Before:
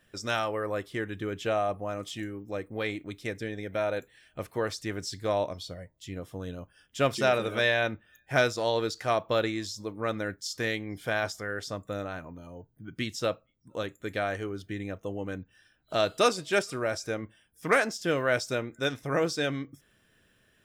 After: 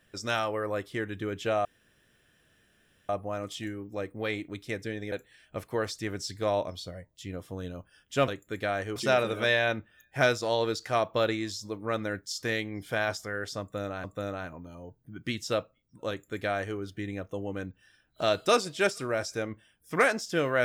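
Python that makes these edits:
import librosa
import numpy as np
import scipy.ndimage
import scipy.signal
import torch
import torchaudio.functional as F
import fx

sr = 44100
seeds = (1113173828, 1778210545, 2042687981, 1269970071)

y = fx.edit(x, sr, fx.insert_room_tone(at_s=1.65, length_s=1.44),
    fx.cut(start_s=3.68, length_s=0.27),
    fx.repeat(start_s=11.76, length_s=0.43, count=2),
    fx.duplicate(start_s=13.81, length_s=0.68, to_s=7.11), tone=tone)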